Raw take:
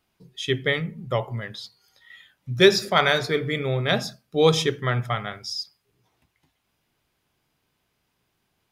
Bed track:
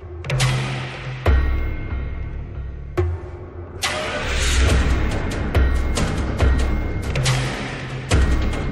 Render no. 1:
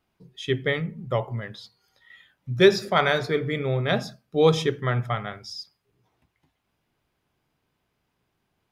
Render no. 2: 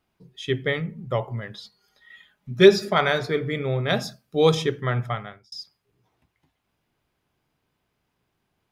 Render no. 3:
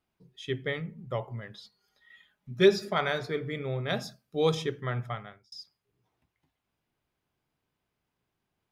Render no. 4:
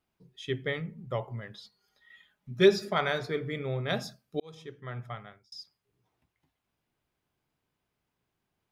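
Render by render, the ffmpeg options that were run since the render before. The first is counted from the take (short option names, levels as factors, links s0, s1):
-af "highshelf=f=2600:g=-8"
-filter_complex "[0:a]asettb=1/sr,asplit=3[s0][s1][s2];[s0]atrim=end=1.544[s3];[s1]atrim=start=1.54:end=2.95,asetpts=PTS-STARTPTS,afade=t=in:d=0.004:c=qsin,afade=t=out:st=1.406:d=0.004:c=qsin,aecho=1:1:4.8:0.65,atrim=end_sample=62181[s4];[s2]atrim=start=2.946[s5];[s3][s4]acrossfade=d=0.004:c1=hsin:c2=qsin[s6];[s6][s5]acrossfade=d=0.004:c1=qsin:c2=hsin,asettb=1/sr,asplit=3[s7][s8][s9];[s7]atrim=end=3.904[s10];[s8]atrim=start=3.9:end=4.55,asetpts=PTS-STARTPTS,afade=t=in:d=0.004:c=qsin,afade=t=out:st=0.646:d=0.004:c=qsin,highshelf=f=4300:g=8[s11];[s9]atrim=start=4.546[s12];[s10][s11]acrossfade=d=0.004:c1=hsin:c2=qsin[s13];[s13][s12]acrossfade=d=0.004:c1=qsin:c2=hsin,asplit=2[s14][s15];[s14]atrim=end=5.52,asetpts=PTS-STARTPTS,afade=t=out:st=5.08:d=0.44[s16];[s15]atrim=start=5.52,asetpts=PTS-STARTPTS,afade=t=in:d=0.004:c=hsin[s17];[s16][s17]concat=n=2:v=0:a=1"
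-af "volume=0.422"
-filter_complex "[0:a]asplit=2[s0][s1];[s0]atrim=end=4.4,asetpts=PTS-STARTPTS,afade=t=out:st=4.396:d=0.004:c=hsin[s2];[s1]atrim=start=4.4,asetpts=PTS-STARTPTS,afade=t=in:d=1.18[s3];[s2][s3]concat=n=2:v=0:a=1"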